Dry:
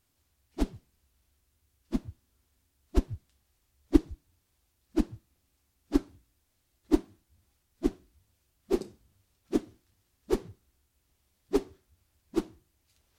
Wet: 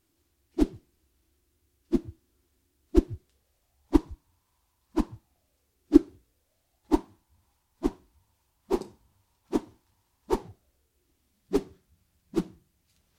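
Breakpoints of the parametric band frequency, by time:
parametric band +13.5 dB 0.45 octaves
0:03.11 330 Hz
0:03.99 980 Hz
0:05.12 980 Hz
0:05.94 320 Hz
0:06.98 930 Hz
0:10.35 930 Hz
0:11.55 170 Hz

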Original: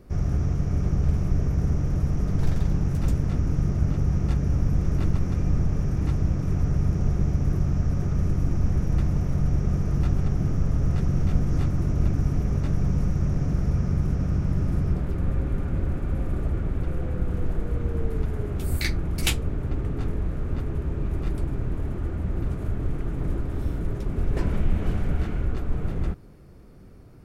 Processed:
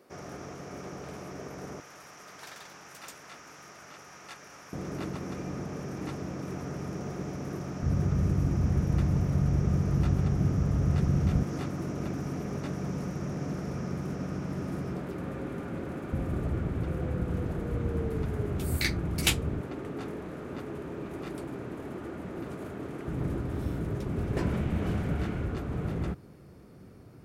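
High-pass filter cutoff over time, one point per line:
440 Hz
from 0:01.80 1,100 Hz
from 0:04.73 280 Hz
from 0:07.82 78 Hz
from 0:11.43 230 Hz
from 0:16.13 89 Hz
from 0:19.61 260 Hz
from 0:23.08 95 Hz

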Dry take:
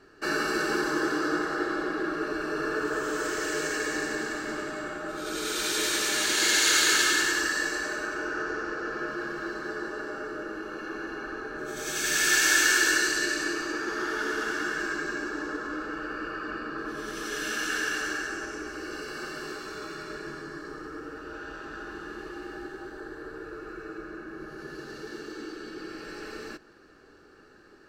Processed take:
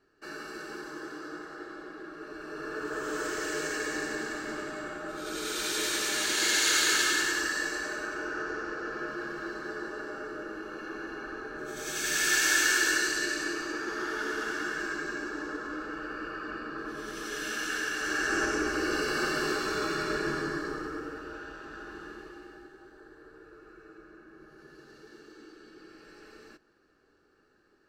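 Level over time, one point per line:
0:02.12 −13.5 dB
0:03.16 −3 dB
0:17.96 −3 dB
0:18.40 +7.5 dB
0:20.45 +7.5 dB
0:21.56 −4 dB
0:22.06 −4 dB
0:22.72 −12 dB

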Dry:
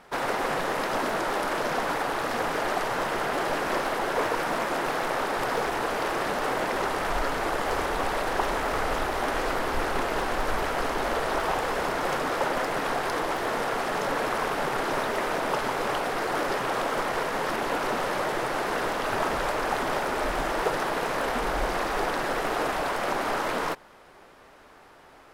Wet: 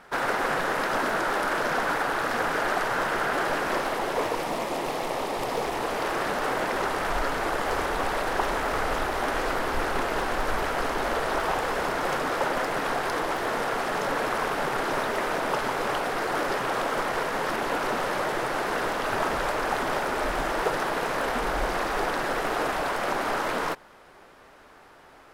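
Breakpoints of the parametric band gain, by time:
parametric band 1,500 Hz 0.54 octaves
0:03.40 +5.5 dB
0:04.01 −2 dB
0:04.54 −10.5 dB
0:05.48 −10.5 dB
0:06.16 +1.5 dB

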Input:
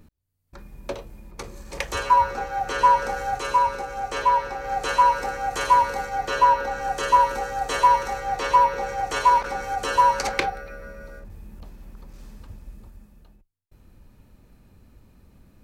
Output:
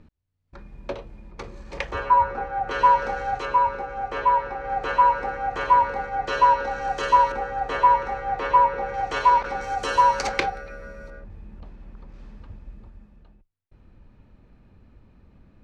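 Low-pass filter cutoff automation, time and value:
3,700 Hz
from 0:01.91 1,900 Hz
from 0:02.71 3,600 Hz
from 0:03.45 2,300 Hz
from 0:06.27 4,800 Hz
from 0:07.32 2,300 Hz
from 0:08.94 3,900 Hz
from 0:09.61 6,800 Hz
from 0:11.10 3,000 Hz

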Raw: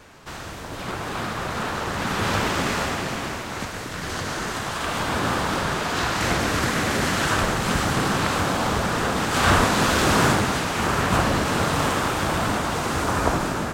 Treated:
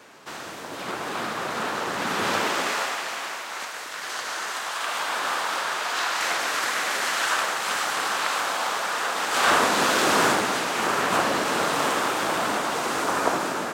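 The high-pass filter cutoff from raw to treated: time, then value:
0:02.28 250 Hz
0:02.98 740 Hz
0:09.09 740 Hz
0:09.70 320 Hz

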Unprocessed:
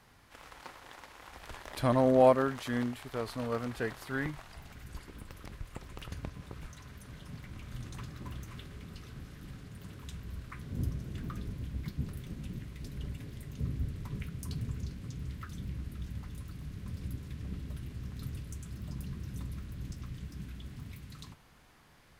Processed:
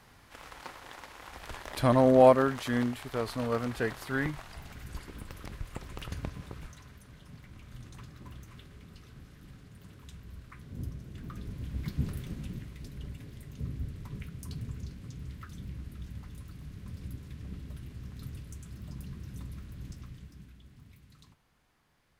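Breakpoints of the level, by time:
0:06.36 +3.5 dB
0:07.09 −4.5 dB
0:11.14 −4.5 dB
0:12.05 +5 dB
0:12.94 −2 dB
0:19.95 −2 dB
0:20.58 −10 dB

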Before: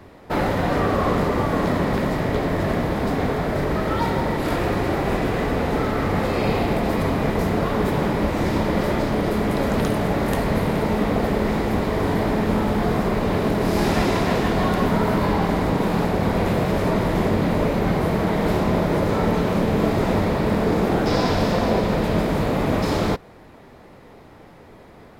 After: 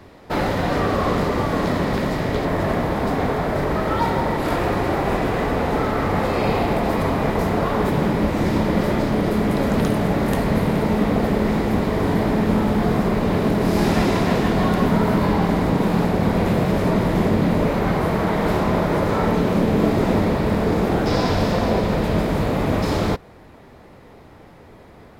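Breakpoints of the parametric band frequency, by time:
parametric band +3.5 dB 1.4 octaves
4,700 Hz
from 0:02.45 910 Hz
from 0:07.89 190 Hz
from 0:17.67 1,200 Hz
from 0:19.33 260 Hz
from 0:20.35 72 Hz

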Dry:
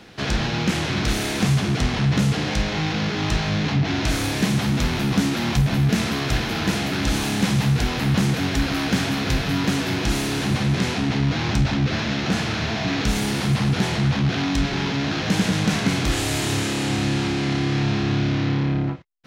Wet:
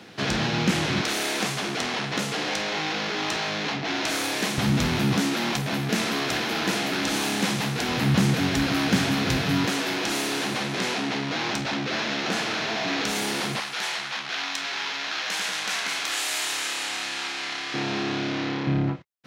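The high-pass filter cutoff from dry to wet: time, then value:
130 Hz
from 0:01.01 380 Hz
from 0:04.58 96 Hz
from 0:05.17 270 Hz
from 0:07.89 110 Hz
from 0:09.66 340 Hz
from 0:13.60 1,000 Hz
from 0:17.74 320 Hz
from 0:18.67 110 Hz

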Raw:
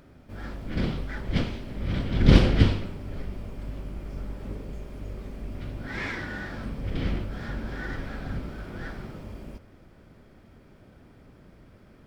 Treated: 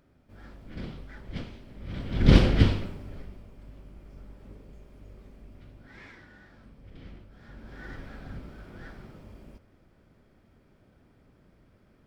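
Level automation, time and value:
0:01.83 −11 dB
0:02.28 −1 dB
0:02.83 −1 dB
0:03.47 −12 dB
0:05.27 −12 dB
0:06.33 −18.5 dB
0:07.32 −18.5 dB
0:07.88 −8 dB

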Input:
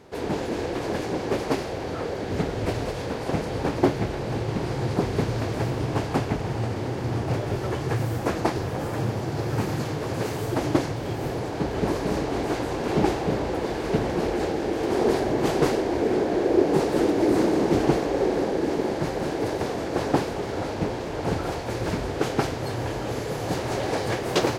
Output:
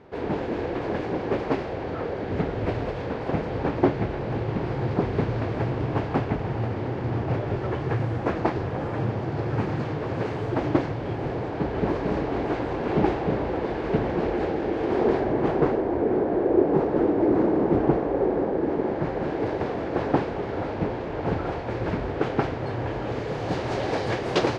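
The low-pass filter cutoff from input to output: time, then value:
0:14.97 2,600 Hz
0:15.79 1,400 Hz
0:18.51 1,400 Hz
0:19.42 2,500 Hz
0:22.84 2,500 Hz
0:23.77 4,500 Hz

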